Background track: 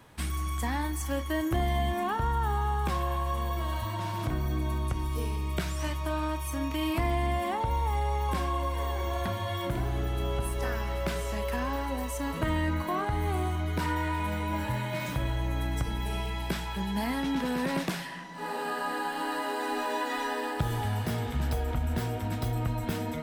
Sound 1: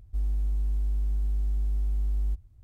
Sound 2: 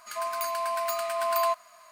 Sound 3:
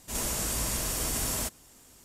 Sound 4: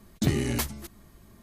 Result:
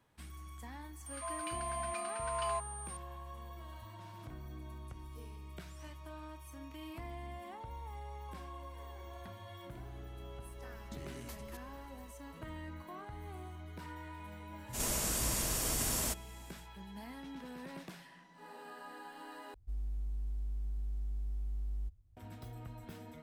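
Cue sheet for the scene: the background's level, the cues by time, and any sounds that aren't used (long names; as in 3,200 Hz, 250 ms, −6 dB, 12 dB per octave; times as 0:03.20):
background track −17.5 dB
0:01.06: mix in 2 −10.5 dB + switching amplifier with a slow clock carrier 8,800 Hz
0:10.70: mix in 4 −7.5 dB + downward compressor 4 to 1, threshold −39 dBFS
0:14.65: mix in 3 −3.5 dB, fades 0.10 s
0:19.54: overwrite with 1 −11 dB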